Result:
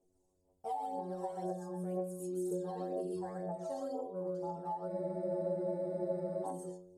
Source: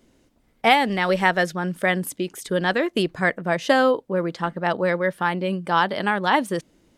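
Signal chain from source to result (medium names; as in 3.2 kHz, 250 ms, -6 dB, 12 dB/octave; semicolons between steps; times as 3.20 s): peaking EQ 720 Hz +10.5 dB 0.64 oct; inharmonic resonator 89 Hz, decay 0.66 s, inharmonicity 0.002; gated-style reverb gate 160 ms rising, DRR -1.5 dB; phaser 2 Hz, delay 1.2 ms, feedback 58%; compression 6:1, threshold -26 dBFS, peak gain reduction 14.5 dB; FFT filter 120 Hz 0 dB, 250 Hz -6 dB, 410 Hz +6 dB, 620 Hz -3 dB, 890 Hz -2 dB, 2.2 kHz -28 dB, 8.4 kHz +6 dB, 13 kHz -3 dB; spectral freeze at 4.91 s, 1.54 s; trim -8 dB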